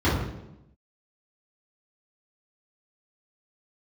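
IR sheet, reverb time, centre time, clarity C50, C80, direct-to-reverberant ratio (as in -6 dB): 0.90 s, 58 ms, 2.0 dB, 5.5 dB, -10.5 dB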